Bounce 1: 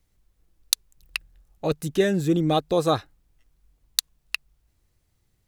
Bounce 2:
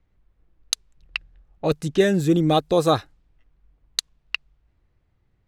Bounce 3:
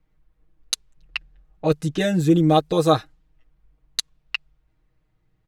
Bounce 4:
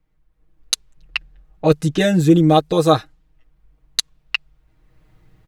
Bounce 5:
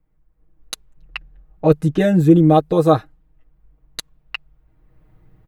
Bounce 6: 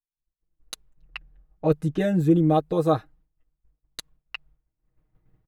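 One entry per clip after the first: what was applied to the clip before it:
low-pass opened by the level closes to 2200 Hz, open at -20 dBFS; gain +3 dB
comb 6.4 ms, depth 85%; gain -2.5 dB
AGC gain up to 16.5 dB; gain -1 dB
bell 5500 Hz -13.5 dB 2.6 oct; gain +1.5 dB
expander -43 dBFS; gain -7.5 dB

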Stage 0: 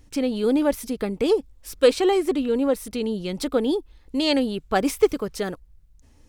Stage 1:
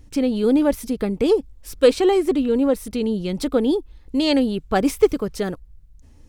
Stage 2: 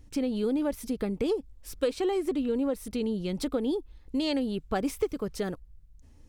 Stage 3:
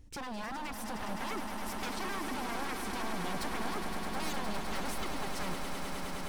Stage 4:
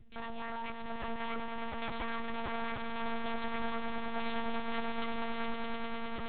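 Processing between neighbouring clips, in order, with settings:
low shelf 350 Hz +6.5 dB
compressor 4:1, threshold -19 dBFS, peak gain reduction 9 dB; gain -6 dB
wavefolder -32 dBFS; swelling echo 0.103 s, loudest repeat 8, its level -9 dB; gain -3 dB
monotone LPC vocoder at 8 kHz 230 Hz

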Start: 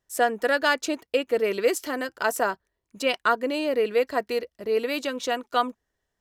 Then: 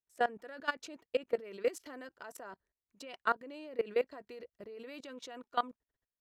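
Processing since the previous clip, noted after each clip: high shelf 6000 Hz -11 dB; level quantiser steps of 20 dB; gain -6.5 dB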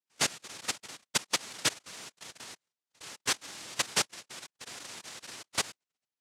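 noise vocoder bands 1; gain +1.5 dB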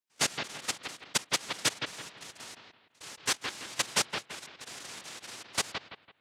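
analogue delay 0.167 s, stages 4096, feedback 32%, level -5 dB

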